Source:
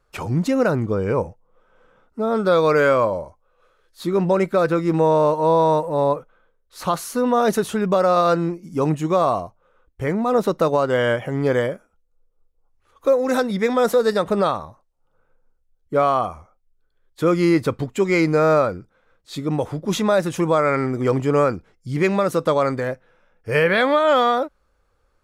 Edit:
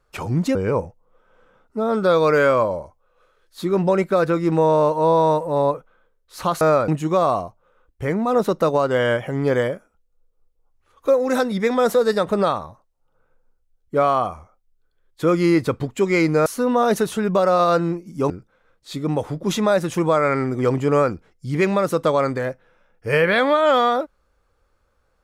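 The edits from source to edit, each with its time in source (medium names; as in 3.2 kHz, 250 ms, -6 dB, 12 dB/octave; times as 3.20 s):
0.55–0.97 s: delete
7.03–8.87 s: swap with 18.45–18.72 s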